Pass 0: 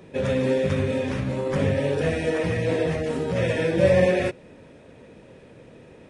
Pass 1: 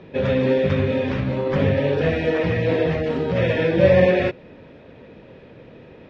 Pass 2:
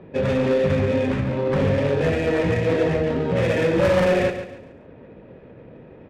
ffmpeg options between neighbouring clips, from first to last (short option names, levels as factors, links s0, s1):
-af "lowpass=f=4400:w=0.5412,lowpass=f=4400:w=1.3066,volume=1.5"
-af "asoftclip=type=hard:threshold=0.178,adynamicsmooth=sensitivity=4:basefreq=1800,aecho=1:1:140|280|420|560:0.316|0.108|0.0366|0.0124"